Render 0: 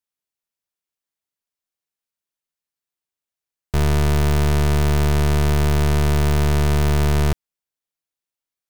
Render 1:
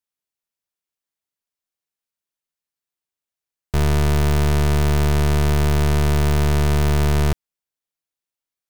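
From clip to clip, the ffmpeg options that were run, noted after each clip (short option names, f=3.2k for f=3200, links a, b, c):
-af anull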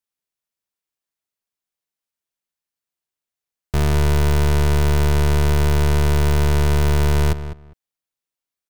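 -filter_complex "[0:a]asplit=2[a][b];[b]adelay=202,lowpass=f=2.6k:p=1,volume=-11.5dB,asplit=2[c][d];[d]adelay=202,lowpass=f=2.6k:p=1,volume=0.17[e];[a][c][e]amix=inputs=3:normalize=0"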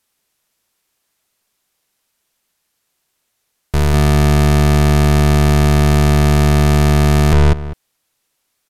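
-filter_complex "[0:a]asplit=2[a][b];[b]aeval=exprs='0.211*sin(PI/2*3.16*val(0)/0.211)':c=same,volume=-4.5dB[c];[a][c]amix=inputs=2:normalize=0,aresample=32000,aresample=44100,volume=8dB" -ar 44100 -c:a sbc -b:a 128k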